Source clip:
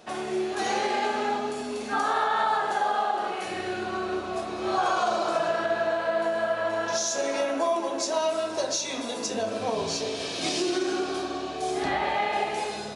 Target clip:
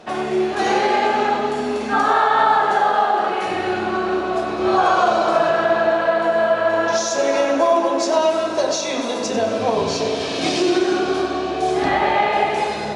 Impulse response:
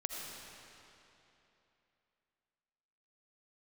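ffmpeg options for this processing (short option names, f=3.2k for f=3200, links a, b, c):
-filter_complex "[0:a]aemphasis=mode=reproduction:type=50kf,asplit=2[a][b];[1:a]atrim=start_sample=2205,asetrate=34398,aresample=44100,adelay=95[c];[b][c]afir=irnorm=-1:irlink=0,volume=-11dB[d];[a][d]amix=inputs=2:normalize=0,volume=9dB"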